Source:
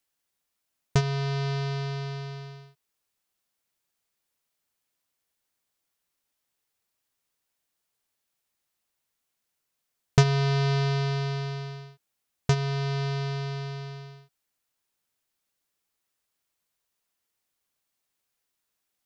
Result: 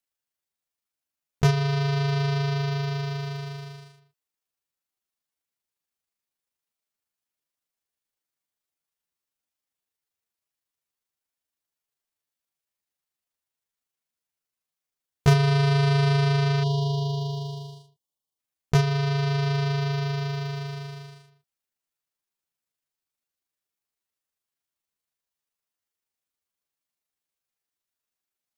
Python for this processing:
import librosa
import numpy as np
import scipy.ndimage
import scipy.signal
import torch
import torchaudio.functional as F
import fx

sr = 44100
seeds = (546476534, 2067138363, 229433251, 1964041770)

y = fx.leveller(x, sr, passes=2)
y = fx.stretch_grains(y, sr, factor=1.5, grain_ms=79.0)
y = fx.spec_erase(y, sr, start_s=16.63, length_s=1.75, low_hz=1200.0, high_hz=2800.0)
y = F.gain(torch.from_numpy(y), -3.0).numpy()